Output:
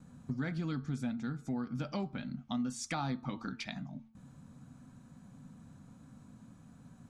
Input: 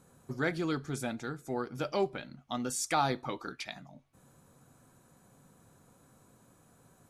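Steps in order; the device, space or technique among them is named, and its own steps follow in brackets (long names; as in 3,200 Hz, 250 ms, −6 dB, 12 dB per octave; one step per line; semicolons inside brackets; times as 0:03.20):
noise gate with hold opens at −55 dBFS
jukebox (low-pass filter 6,600 Hz 12 dB per octave; low shelf with overshoot 300 Hz +7 dB, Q 3; downward compressor 3 to 1, threshold −35 dBFS, peak gain reduction 10 dB)
hum removal 111.7 Hz, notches 14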